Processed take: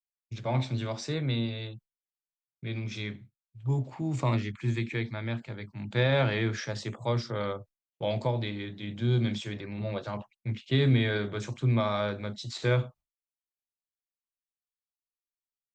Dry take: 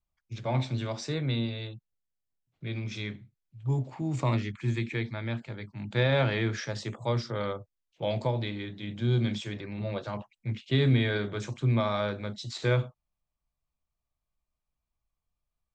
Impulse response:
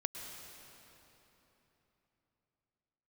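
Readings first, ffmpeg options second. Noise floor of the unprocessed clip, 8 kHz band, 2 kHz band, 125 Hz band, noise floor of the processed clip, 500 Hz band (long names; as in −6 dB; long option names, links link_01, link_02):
below −85 dBFS, can't be measured, 0.0 dB, 0.0 dB, below −85 dBFS, 0.0 dB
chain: -af "agate=range=-33dB:threshold=-47dB:ratio=3:detection=peak"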